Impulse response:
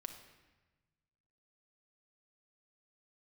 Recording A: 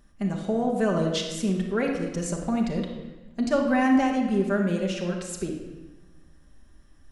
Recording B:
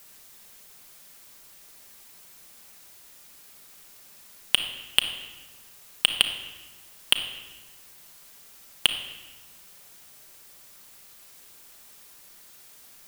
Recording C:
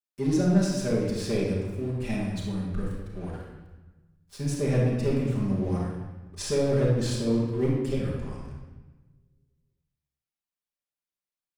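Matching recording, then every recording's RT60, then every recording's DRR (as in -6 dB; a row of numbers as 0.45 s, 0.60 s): B; 1.2 s, 1.2 s, 1.2 s; 0.0 dB, 4.5 dB, -8.5 dB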